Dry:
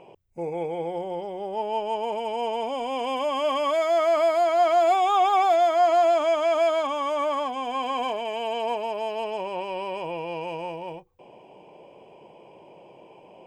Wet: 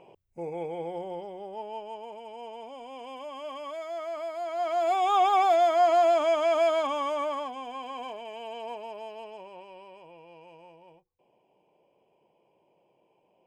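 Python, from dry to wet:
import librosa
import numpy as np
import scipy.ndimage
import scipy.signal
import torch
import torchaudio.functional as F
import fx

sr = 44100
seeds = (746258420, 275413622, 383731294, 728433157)

y = fx.gain(x, sr, db=fx.line((1.09, -5.0), (2.13, -14.0), (4.33, -14.0), (5.14, -2.0), (6.97, -2.0), (7.82, -10.5), (8.95, -10.5), (10.06, -19.0)))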